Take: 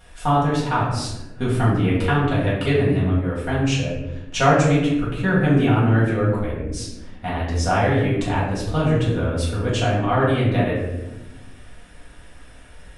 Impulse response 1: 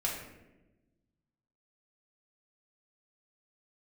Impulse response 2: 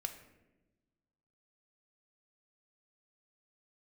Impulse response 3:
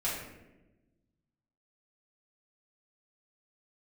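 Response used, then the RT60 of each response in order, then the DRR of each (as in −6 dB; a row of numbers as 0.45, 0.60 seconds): 3; 1.1, 1.1, 1.0 seconds; −3.5, 6.0, −8.5 decibels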